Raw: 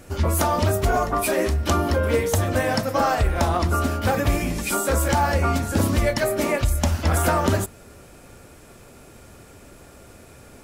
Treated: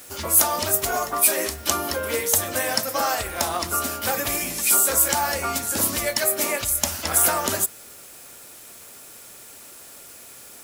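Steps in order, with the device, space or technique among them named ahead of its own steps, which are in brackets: turntable without a phono preamp (RIAA curve recording; white noise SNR 25 dB); gain -2.5 dB

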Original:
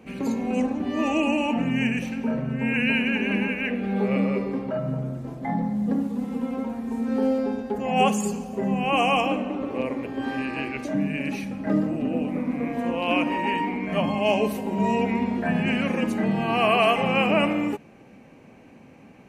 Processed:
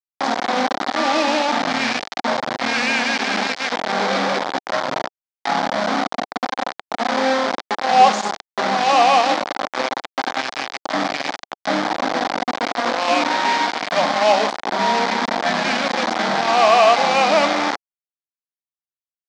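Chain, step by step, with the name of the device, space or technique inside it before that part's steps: hand-held game console (bit-crush 4-bit; speaker cabinet 410–5200 Hz, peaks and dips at 420 Hz -8 dB, 770 Hz +5 dB, 2700 Hz -8 dB); gain +7 dB

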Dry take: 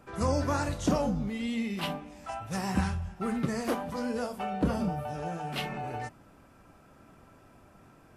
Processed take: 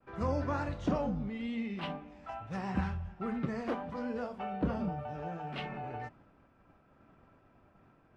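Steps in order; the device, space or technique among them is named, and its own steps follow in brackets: hearing-loss simulation (LPF 2900 Hz 12 dB/oct; expander -53 dBFS); gain -4.5 dB

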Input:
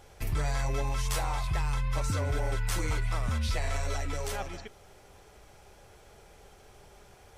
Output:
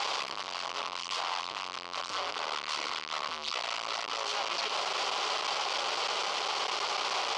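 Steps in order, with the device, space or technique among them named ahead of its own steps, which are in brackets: home computer beeper (infinite clipping; speaker cabinet 680–5600 Hz, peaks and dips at 1100 Hz +8 dB, 1700 Hz -7 dB, 3000 Hz +5 dB, 4600 Hz +5 dB); gain +2 dB

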